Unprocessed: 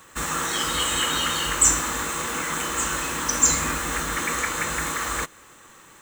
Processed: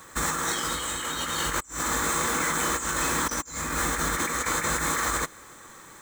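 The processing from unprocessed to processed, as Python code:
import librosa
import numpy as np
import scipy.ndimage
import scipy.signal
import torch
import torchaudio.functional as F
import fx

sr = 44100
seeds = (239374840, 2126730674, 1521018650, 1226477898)

y = fx.peak_eq(x, sr, hz=2800.0, db=-12.0, octaves=0.21)
y = fx.over_compress(y, sr, threshold_db=-28.0, ratio=-0.5)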